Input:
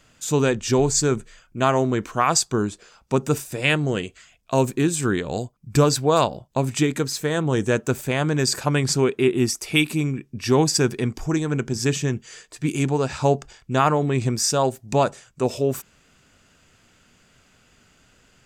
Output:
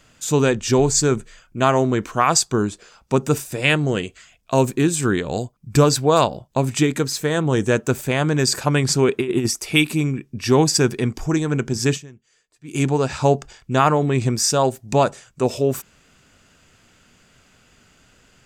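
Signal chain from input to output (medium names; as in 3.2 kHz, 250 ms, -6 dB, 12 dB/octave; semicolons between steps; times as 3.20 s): 9.08–9.48 s: compressor with a negative ratio -21 dBFS, ratio -0.5; 11.94–12.76 s: dip -22.5 dB, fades 0.39 s exponential; trim +2.5 dB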